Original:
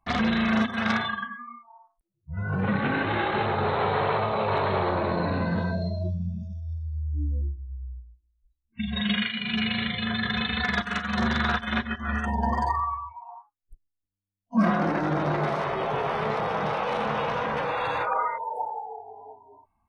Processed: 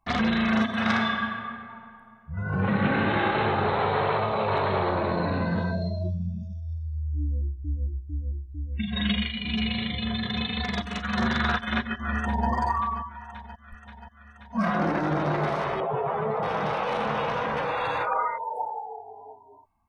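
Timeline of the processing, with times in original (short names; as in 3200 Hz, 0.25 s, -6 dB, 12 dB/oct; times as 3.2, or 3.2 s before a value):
0.62–3.42 reverb throw, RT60 2.3 s, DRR 2.5 dB
7.19–7.89 echo throw 0.45 s, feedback 80%, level -2.5 dB
9.12–11.03 bell 1500 Hz -12.5 dB 0.67 oct
11.75–12.49 echo throw 0.53 s, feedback 75%, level -13.5 dB
13.15–14.75 bell 320 Hz -14 dB 0.9 oct
15.8–16.43 spectral contrast raised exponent 1.7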